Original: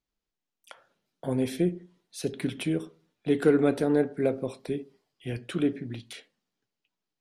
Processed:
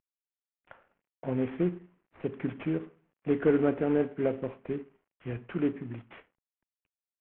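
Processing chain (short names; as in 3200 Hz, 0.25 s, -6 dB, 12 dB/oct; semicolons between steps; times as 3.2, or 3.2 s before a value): CVSD 16 kbps; LPF 2200 Hz 12 dB/oct; gain -2 dB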